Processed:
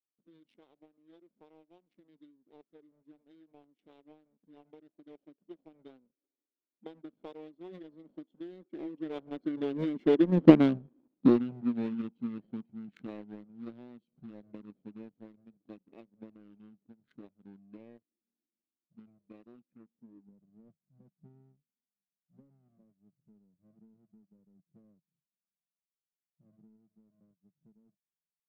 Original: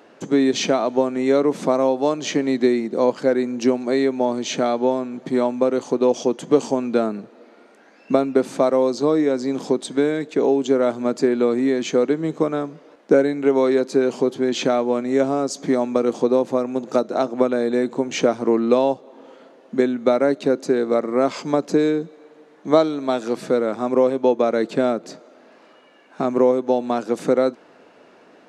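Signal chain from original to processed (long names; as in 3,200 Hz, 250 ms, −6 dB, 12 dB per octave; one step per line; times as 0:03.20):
adaptive Wiener filter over 41 samples
source passing by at 0:10.54, 54 m/s, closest 12 metres
low-pass filter sweep 4,700 Hz → 210 Hz, 0:19.67–0:20.33
power curve on the samples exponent 1.4
formants moved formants −5 semitones
level +8 dB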